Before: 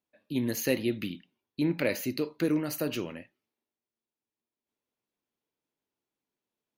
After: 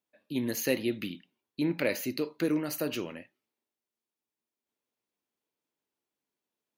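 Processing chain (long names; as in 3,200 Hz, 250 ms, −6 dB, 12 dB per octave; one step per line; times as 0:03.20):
low-shelf EQ 120 Hz −9 dB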